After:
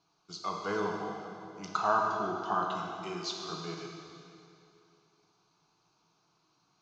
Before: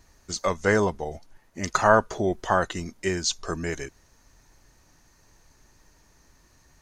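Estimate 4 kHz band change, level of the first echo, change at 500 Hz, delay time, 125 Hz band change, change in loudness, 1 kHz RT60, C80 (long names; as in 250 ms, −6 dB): −7.0 dB, no echo audible, −11.0 dB, no echo audible, −13.5 dB, −8.5 dB, 2.7 s, 2.5 dB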